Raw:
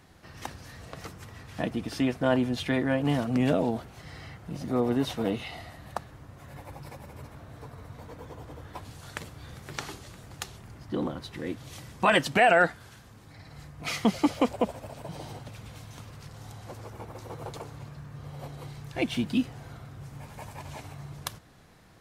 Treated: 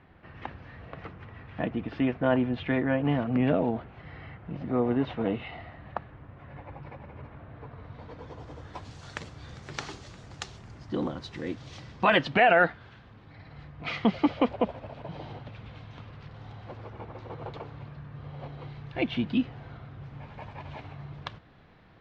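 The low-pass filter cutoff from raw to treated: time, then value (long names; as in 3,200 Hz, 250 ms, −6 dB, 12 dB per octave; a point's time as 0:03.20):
low-pass filter 24 dB per octave
0:07.61 2,800 Hz
0:08.55 6,700 Hz
0:11.41 6,700 Hz
0:12.46 3,600 Hz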